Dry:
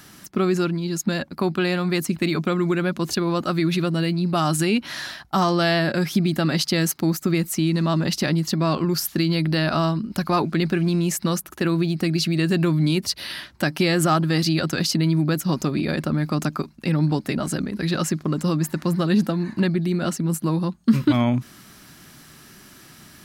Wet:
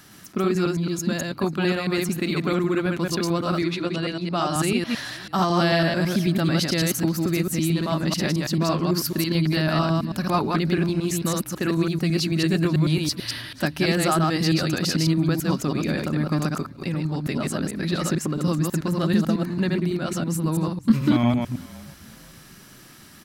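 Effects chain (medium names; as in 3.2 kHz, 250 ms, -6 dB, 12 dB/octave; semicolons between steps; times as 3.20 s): chunks repeated in reverse 110 ms, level -2 dB; 3.62–4.56 s: band-pass 240–6900 Hz; 16.58–17.26 s: compression, threshold -20 dBFS, peak gain reduction 8 dB; frequency-shifting echo 491 ms, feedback 37%, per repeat -38 Hz, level -22 dB; trim -3 dB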